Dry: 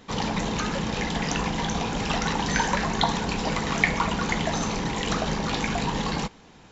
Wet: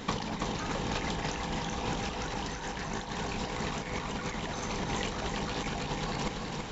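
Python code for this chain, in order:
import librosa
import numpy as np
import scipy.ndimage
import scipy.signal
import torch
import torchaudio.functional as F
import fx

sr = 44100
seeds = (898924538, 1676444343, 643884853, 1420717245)

p1 = fx.over_compress(x, sr, threshold_db=-33.0, ratio=-0.5)
y = p1 + fx.echo_feedback(p1, sr, ms=330, feedback_pct=48, wet_db=-5, dry=0)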